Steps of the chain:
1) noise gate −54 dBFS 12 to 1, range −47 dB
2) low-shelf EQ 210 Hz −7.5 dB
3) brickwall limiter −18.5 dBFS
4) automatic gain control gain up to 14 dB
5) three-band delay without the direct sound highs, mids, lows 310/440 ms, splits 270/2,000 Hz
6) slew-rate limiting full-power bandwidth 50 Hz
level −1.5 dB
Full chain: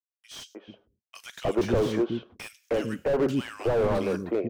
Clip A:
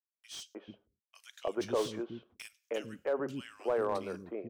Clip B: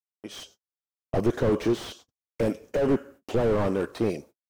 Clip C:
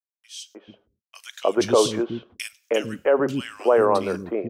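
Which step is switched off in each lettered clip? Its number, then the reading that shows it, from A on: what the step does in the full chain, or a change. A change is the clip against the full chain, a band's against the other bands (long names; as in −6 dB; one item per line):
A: 4, change in momentary loudness spread −1 LU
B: 5, change in momentary loudness spread −2 LU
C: 6, 125 Hz band −10.0 dB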